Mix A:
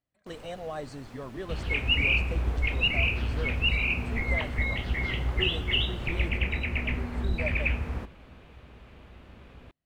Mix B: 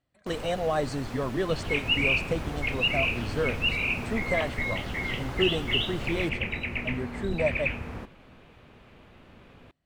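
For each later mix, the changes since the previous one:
speech +9.5 dB; first sound +10.0 dB; second sound: add bell 61 Hz -13 dB 0.64 oct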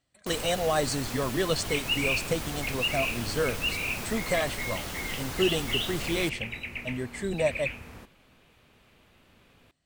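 second sound -9.0 dB; master: remove LPF 1600 Hz 6 dB/oct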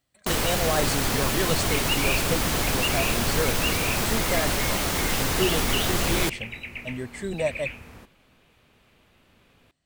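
first sound +11.5 dB

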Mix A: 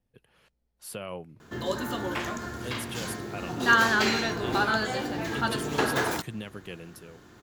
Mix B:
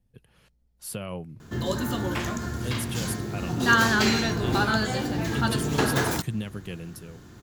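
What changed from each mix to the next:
master: add tone controls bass +10 dB, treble +5 dB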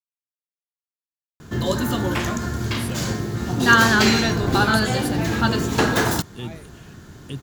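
speech: entry +1.95 s; background +5.5 dB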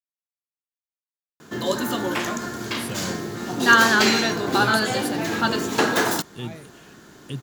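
background: add HPF 250 Hz 12 dB/oct

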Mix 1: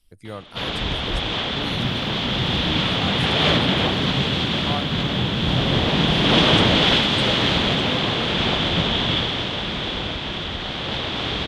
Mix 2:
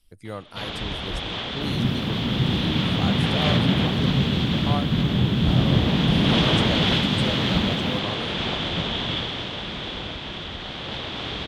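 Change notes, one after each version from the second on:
first sound -5.5 dB; second sound +4.0 dB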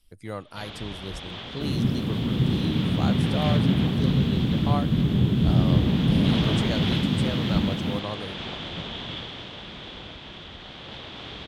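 first sound -8.0 dB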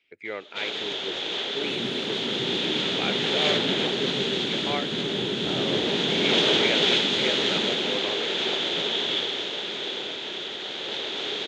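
speech: add synth low-pass 2300 Hz, resonance Q 7.4; first sound +8.0 dB; master: add speaker cabinet 370–9400 Hz, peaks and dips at 400 Hz +9 dB, 720 Hz -3 dB, 1100 Hz -8 dB, 3800 Hz +4 dB, 6700 Hz +9 dB

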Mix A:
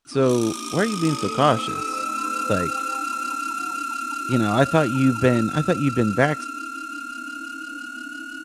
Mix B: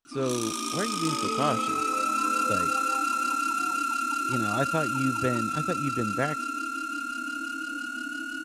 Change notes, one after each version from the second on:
speech -10.0 dB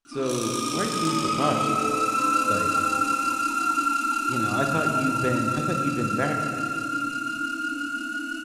reverb: on, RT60 2.1 s

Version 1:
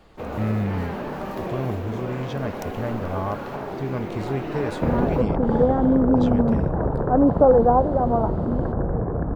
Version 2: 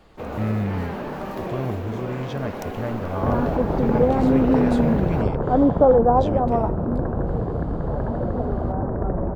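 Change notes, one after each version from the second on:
second sound: entry -1.60 s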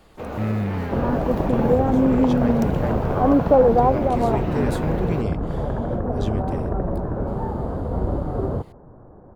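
speech: remove air absorption 63 m; second sound: entry -2.30 s

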